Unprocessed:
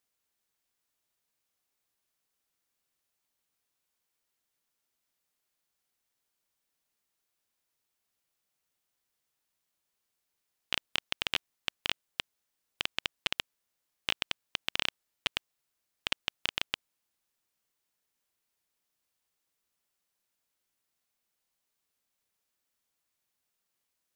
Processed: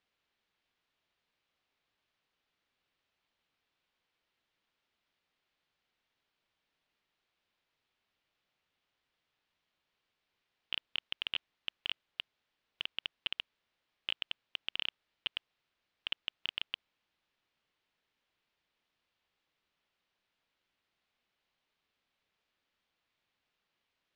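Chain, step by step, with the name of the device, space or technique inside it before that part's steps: overdriven synthesiser ladder filter (soft clip -26.5 dBFS, distortion -4 dB; ladder low-pass 4400 Hz, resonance 25%); gain +10 dB

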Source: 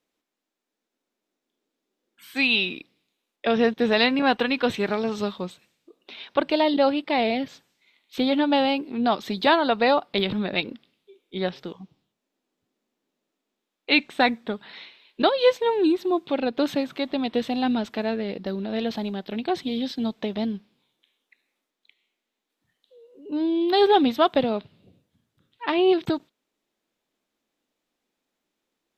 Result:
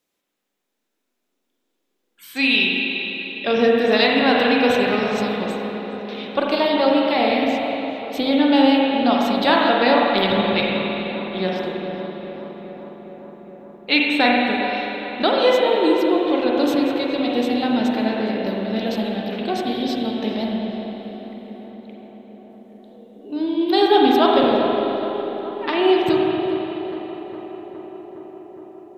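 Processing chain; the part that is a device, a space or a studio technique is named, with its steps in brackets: high shelf 5400 Hz +9 dB; dub delay into a spring reverb (darkening echo 0.413 s, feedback 78%, low-pass 2600 Hz, level -13.5 dB; spring tank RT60 3.2 s, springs 37/41/48 ms, chirp 65 ms, DRR -2.5 dB)

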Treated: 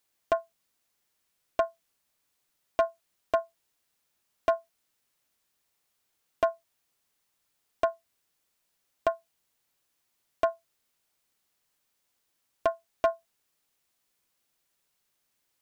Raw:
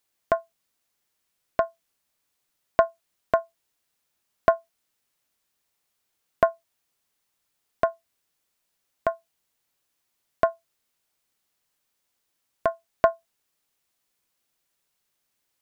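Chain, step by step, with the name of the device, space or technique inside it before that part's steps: limiter into clipper (limiter -10.5 dBFS, peak gain reduction 7 dB; hard clip -16 dBFS, distortion -16 dB)

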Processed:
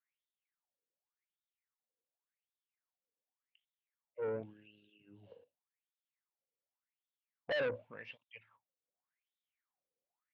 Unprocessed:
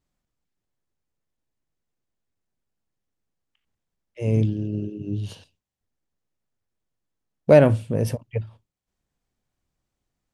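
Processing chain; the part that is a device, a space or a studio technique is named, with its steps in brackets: wah-wah guitar rig (wah 0.88 Hz 470–3700 Hz, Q 9.4; tube stage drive 34 dB, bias 0.3; speaker cabinet 85–3600 Hz, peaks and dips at 380 Hz -4 dB, 640 Hz -5 dB, 2100 Hz +5 dB); gain +4 dB

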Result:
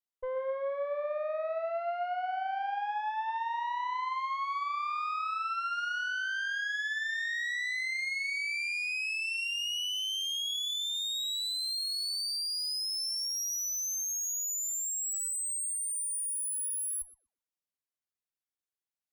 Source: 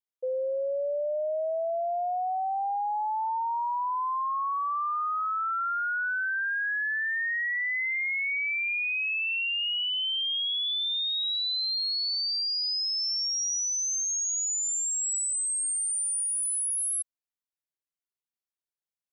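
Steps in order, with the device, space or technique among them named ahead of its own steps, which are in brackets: rockabilly slapback (tube stage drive 31 dB, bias 0.7; tape echo 0.123 s, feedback 30%, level -6.5 dB, low-pass 2500 Hz)

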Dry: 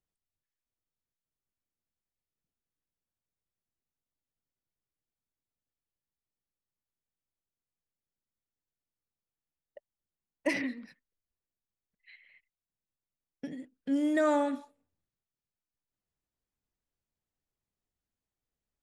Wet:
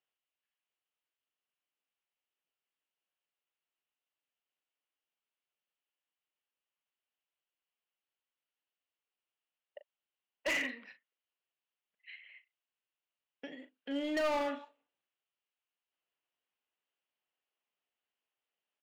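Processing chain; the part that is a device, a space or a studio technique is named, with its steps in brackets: megaphone (BPF 540–2800 Hz; bell 2900 Hz +11.5 dB 0.46 oct; hard clip -32.5 dBFS, distortion -7 dB; doubler 39 ms -11 dB); gain +2.5 dB

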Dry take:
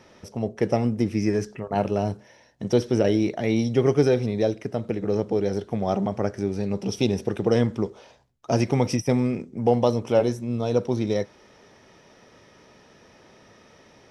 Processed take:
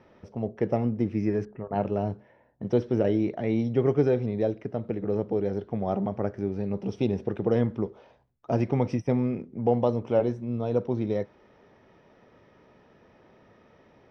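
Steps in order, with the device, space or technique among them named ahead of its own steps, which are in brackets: 1.45–2.63 low-pass opened by the level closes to 1200 Hz, open at -19.5 dBFS; phone in a pocket (LPF 3900 Hz 12 dB/oct; high shelf 2400 Hz -10.5 dB); gain -3 dB

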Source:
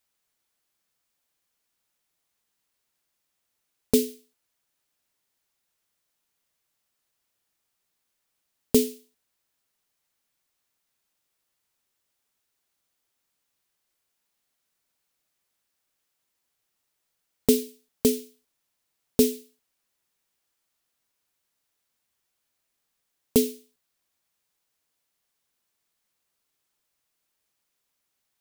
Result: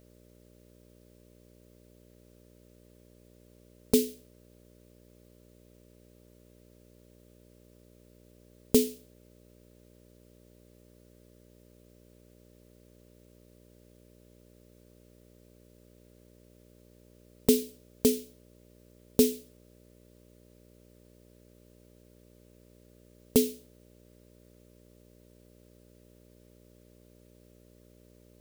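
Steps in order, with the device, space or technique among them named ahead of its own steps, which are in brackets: video cassette with head-switching buzz (buzz 60 Hz, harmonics 10, -56 dBFS -2 dB/oct; white noise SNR 33 dB); gain -2.5 dB

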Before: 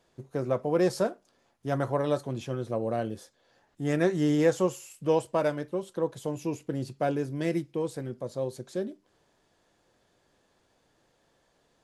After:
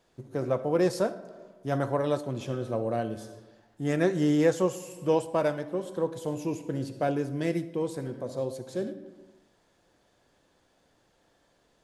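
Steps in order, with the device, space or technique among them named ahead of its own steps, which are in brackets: compressed reverb return (on a send at -4.5 dB: reverb RT60 1.0 s, pre-delay 52 ms + compressor 5:1, threshold -34 dBFS, peak gain reduction 16 dB)

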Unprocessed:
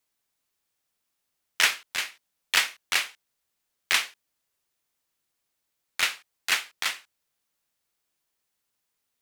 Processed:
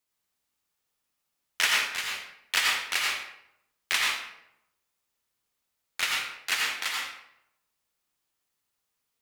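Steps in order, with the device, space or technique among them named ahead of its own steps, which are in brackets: bathroom (reverb RT60 0.80 s, pre-delay 77 ms, DRR -2 dB); gain -4 dB

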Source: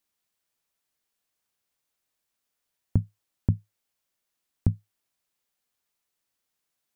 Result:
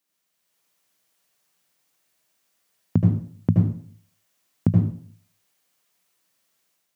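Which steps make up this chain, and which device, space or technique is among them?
far laptop microphone (reverb RT60 0.50 s, pre-delay 72 ms, DRR -1 dB; HPF 120 Hz 24 dB/oct; AGC gain up to 6 dB); gain +1.5 dB

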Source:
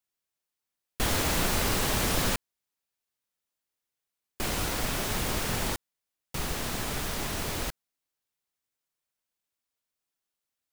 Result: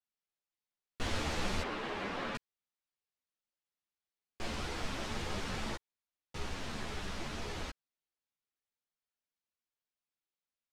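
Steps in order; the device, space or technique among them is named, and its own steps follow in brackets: 1.62–2.35 three-band isolator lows -16 dB, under 190 Hz, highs -16 dB, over 3300 Hz; string-machine ensemble chorus (ensemble effect; LPF 5300 Hz 12 dB/oct); gain -4.5 dB

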